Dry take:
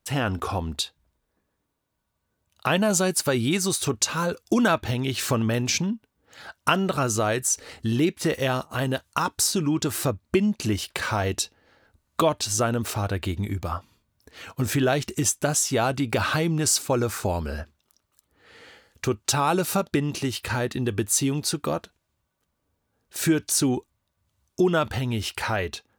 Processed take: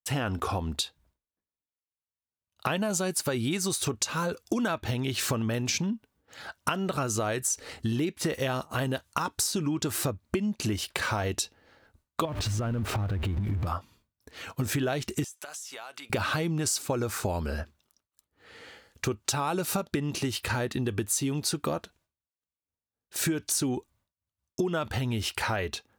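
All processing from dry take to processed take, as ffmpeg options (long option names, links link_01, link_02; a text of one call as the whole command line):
ffmpeg -i in.wav -filter_complex "[0:a]asettb=1/sr,asplit=3[link_01][link_02][link_03];[link_01]atrim=end=12.254[link_04];[link_02]atrim=start=12.25:end=13.67,asetpts=PTS-STARTPTS,afade=type=in:duration=0.004:curve=qsin,afade=type=out:start_time=1.416:duration=0.004:curve=qsin,aeval=exprs='val(0)+0.5*0.0398*sgn(val(0))':channel_layout=same,bass=frequency=250:gain=10,treble=frequency=4000:gain=-12,acompressor=threshold=-24dB:ratio=12:attack=3.2:release=140:knee=1:detection=peak[link_05];[link_03]atrim=start=13.666[link_06];[link_04][link_05]acrossfade=duration=0.004:curve1=hsin:curve2=qsin[link_07];[link_07][link_06]acrossfade=duration=0.004:curve1=qsin:curve2=hsin,asettb=1/sr,asplit=3[link_08][link_09][link_10];[link_08]atrim=end=15.244[link_11];[link_09]atrim=start=15.24:end=16.1,asetpts=PTS-STARTPTS,afade=type=in:duration=0.004:curve=qsin,afade=type=out:start_time=0.856:duration=0.004:curve=qsin,highpass=920,acompressor=threshold=-37dB:ratio=12:attack=3.2:release=140:knee=1:detection=peak[link_12];[link_10]atrim=start=16.096[link_13];[link_11][link_12]acrossfade=duration=0.004:curve1=hsin:curve2=qsin[link_14];[link_14][link_13]acrossfade=duration=0.004:curve1=qsin:curve2=hsin,acompressor=threshold=-25dB:ratio=6,agate=range=-33dB:threshold=-59dB:ratio=3:detection=peak" out.wav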